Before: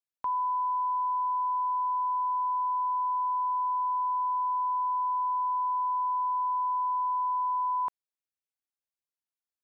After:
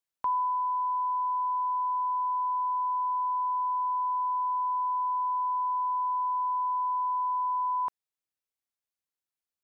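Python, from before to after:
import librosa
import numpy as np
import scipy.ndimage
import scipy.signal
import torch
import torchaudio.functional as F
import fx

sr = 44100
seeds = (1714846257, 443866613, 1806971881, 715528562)

y = fx.rider(x, sr, range_db=10, speed_s=0.5)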